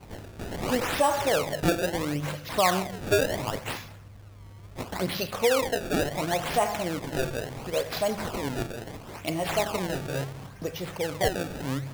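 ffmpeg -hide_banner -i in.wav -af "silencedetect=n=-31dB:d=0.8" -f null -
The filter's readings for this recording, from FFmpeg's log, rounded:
silence_start: 3.79
silence_end: 4.79 | silence_duration: 1.00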